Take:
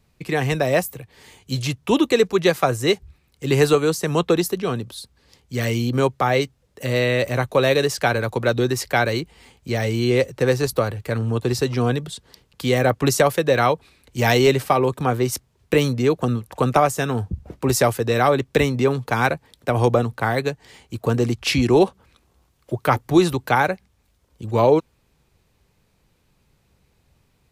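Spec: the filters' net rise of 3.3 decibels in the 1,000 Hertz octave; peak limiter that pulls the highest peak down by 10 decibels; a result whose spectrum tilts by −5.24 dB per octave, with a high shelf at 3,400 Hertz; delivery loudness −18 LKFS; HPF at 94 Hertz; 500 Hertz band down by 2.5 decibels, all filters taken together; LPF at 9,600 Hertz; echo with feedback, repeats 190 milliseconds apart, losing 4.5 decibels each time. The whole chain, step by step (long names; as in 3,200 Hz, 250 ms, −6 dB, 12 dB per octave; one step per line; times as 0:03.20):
high-pass filter 94 Hz
low-pass filter 9,600 Hz
parametric band 500 Hz −4.5 dB
parametric band 1,000 Hz +7 dB
high-shelf EQ 3,400 Hz −8 dB
brickwall limiter −12 dBFS
repeating echo 190 ms, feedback 60%, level −4.5 dB
level +4.5 dB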